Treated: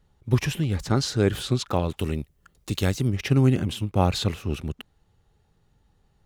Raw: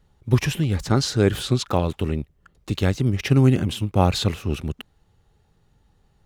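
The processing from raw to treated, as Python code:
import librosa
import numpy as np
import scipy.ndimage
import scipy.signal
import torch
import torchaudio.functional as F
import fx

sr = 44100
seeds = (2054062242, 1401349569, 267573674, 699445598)

y = fx.high_shelf(x, sr, hz=fx.line((1.96, 3900.0), (3.06, 5900.0)), db=11.5, at=(1.96, 3.06), fade=0.02)
y = y * librosa.db_to_amplitude(-3.0)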